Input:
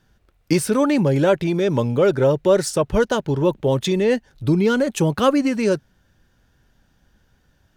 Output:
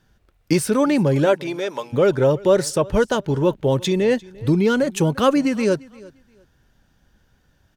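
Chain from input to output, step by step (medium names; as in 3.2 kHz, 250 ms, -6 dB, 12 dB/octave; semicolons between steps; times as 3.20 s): 1.25–1.92 s: high-pass 240 Hz -> 990 Hz 12 dB/octave; on a send: feedback delay 347 ms, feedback 21%, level -22.5 dB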